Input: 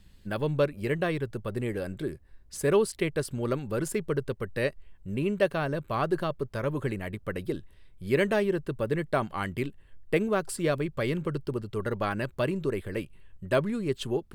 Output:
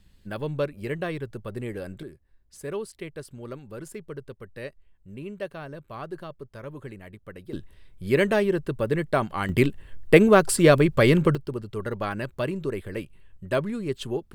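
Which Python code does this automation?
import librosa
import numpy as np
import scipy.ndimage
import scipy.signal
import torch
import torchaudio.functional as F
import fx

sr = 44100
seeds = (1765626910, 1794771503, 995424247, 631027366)

y = fx.gain(x, sr, db=fx.steps((0.0, -2.0), (2.03, -9.0), (7.53, 3.5), (9.49, 11.0), (11.35, 0.0)))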